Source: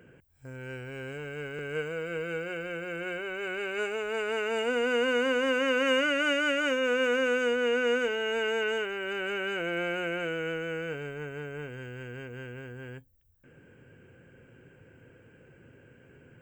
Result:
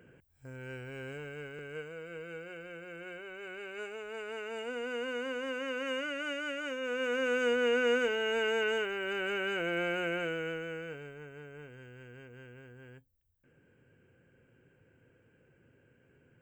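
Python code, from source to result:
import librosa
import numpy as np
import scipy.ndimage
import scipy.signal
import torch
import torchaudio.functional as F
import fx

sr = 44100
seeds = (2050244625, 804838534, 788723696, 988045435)

y = fx.gain(x, sr, db=fx.line((1.13, -3.5), (1.88, -10.0), (6.74, -10.0), (7.51, -1.5), (10.16, -1.5), (11.23, -10.0)))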